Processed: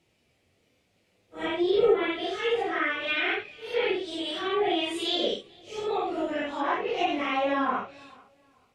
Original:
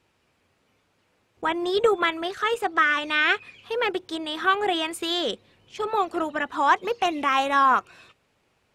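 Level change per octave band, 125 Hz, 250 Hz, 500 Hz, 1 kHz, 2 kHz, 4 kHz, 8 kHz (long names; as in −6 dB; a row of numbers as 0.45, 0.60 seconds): can't be measured, 0.0 dB, 0.0 dB, −7.5 dB, −6.5 dB, −2.5 dB, −7.5 dB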